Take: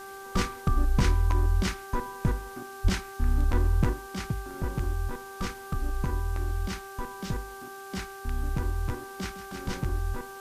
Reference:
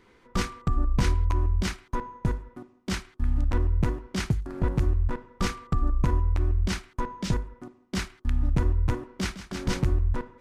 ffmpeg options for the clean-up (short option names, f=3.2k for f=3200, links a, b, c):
-filter_complex "[0:a]bandreject=f=391.2:t=h:w=4,bandreject=f=782.4:t=h:w=4,bandreject=f=1.1736k:t=h:w=4,bandreject=f=1.5648k:t=h:w=4,asplit=3[a][b][c];[a]afade=t=out:st=2.83:d=0.02[d];[b]highpass=f=140:w=0.5412,highpass=f=140:w=1.3066,afade=t=in:st=2.83:d=0.02,afade=t=out:st=2.95:d=0.02[e];[c]afade=t=in:st=2.95:d=0.02[f];[d][e][f]amix=inputs=3:normalize=0,afwtdn=0.0028,asetnsamples=n=441:p=0,asendcmd='3.93 volume volume 6dB',volume=0dB"